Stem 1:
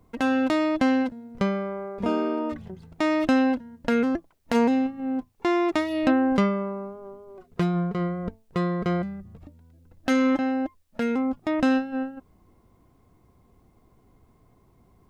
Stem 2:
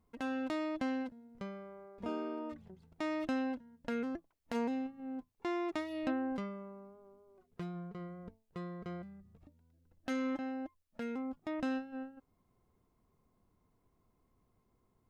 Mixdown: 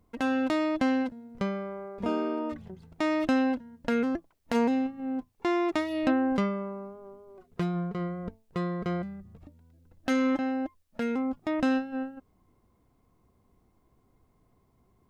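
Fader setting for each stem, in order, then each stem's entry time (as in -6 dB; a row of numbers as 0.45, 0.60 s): -8.5, +1.5 dB; 0.00, 0.00 s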